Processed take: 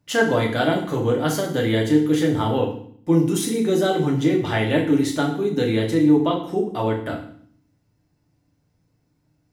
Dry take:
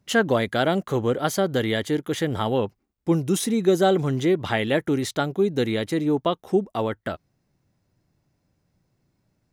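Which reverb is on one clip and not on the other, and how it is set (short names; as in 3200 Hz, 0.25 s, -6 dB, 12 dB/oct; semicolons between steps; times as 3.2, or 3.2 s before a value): FDN reverb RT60 0.56 s, low-frequency decay 1.5×, high-frequency decay 1×, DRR -1.5 dB; gain -2.5 dB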